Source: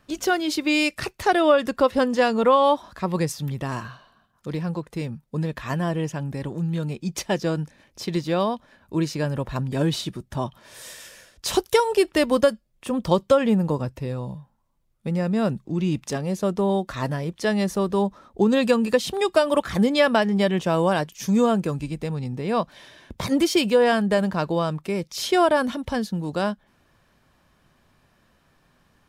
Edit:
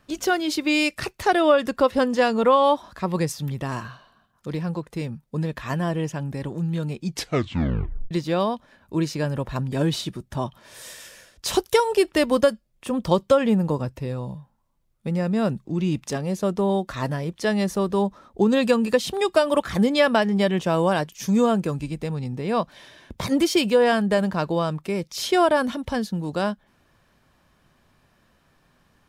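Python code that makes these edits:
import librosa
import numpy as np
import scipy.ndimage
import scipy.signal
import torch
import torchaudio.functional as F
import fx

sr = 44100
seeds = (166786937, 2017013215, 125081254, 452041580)

y = fx.edit(x, sr, fx.tape_stop(start_s=7.07, length_s=1.04), tone=tone)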